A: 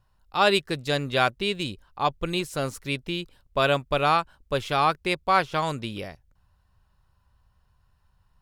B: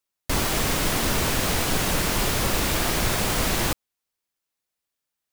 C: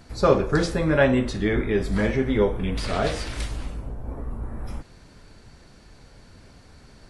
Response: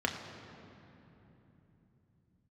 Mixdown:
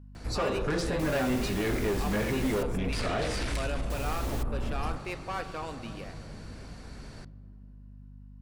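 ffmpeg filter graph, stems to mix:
-filter_complex "[0:a]asoftclip=type=tanh:threshold=-21dB,volume=-12.5dB,asplit=2[link_01][link_02];[link_02]volume=-8dB[link_03];[1:a]adelay=700,volume=-17.5dB,asplit=3[link_04][link_05][link_06];[link_04]atrim=end=2.63,asetpts=PTS-STARTPTS,afade=type=out:start_time=2.626:duration=0.004:curve=hsin[link_07];[link_05]atrim=start=2.63:end=3.9,asetpts=PTS-STARTPTS,volume=0[link_08];[link_06]atrim=start=3.9,asetpts=PTS-STARTPTS,afade=type=in:duration=0.004:curve=hsin[link_09];[link_07][link_08][link_09]concat=n=3:v=0:a=1[link_10];[2:a]acompressor=threshold=-24dB:ratio=2,asoftclip=type=tanh:threshold=-25.5dB,adelay=150,volume=2.5dB,asplit=2[link_11][link_12];[link_12]volume=-23dB[link_13];[link_01][link_11]amix=inputs=2:normalize=0,alimiter=level_in=1.5dB:limit=-24dB:level=0:latency=1,volume=-1.5dB,volume=0dB[link_14];[3:a]atrim=start_sample=2205[link_15];[link_03][link_13]amix=inputs=2:normalize=0[link_16];[link_16][link_15]afir=irnorm=-1:irlink=0[link_17];[link_10][link_14][link_17]amix=inputs=3:normalize=0,aeval=exprs='val(0)+0.00447*(sin(2*PI*50*n/s)+sin(2*PI*2*50*n/s)/2+sin(2*PI*3*50*n/s)/3+sin(2*PI*4*50*n/s)/4+sin(2*PI*5*50*n/s)/5)':channel_layout=same"

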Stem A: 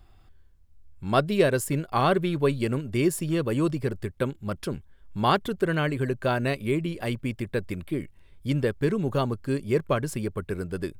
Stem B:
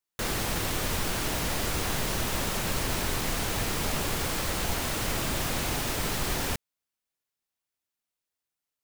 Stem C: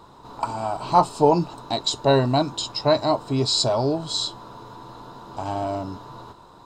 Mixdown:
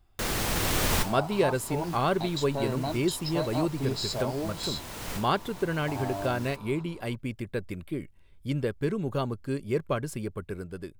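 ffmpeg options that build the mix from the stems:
ffmpeg -i stem1.wav -i stem2.wav -i stem3.wav -filter_complex "[0:a]bandreject=frequency=1800:width=22,volume=-9dB,asplit=2[link_01][link_02];[1:a]volume=0dB[link_03];[2:a]alimiter=limit=-15dB:level=0:latency=1:release=205,adelay=500,volume=-13dB[link_04];[link_02]apad=whole_len=389477[link_05];[link_03][link_05]sidechaincompress=threshold=-50dB:ratio=16:attack=7.1:release=806[link_06];[link_01][link_06][link_04]amix=inputs=3:normalize=0,dynaudnorm=framelen=270:gausssize=5:maxgain=5dB" out.wav

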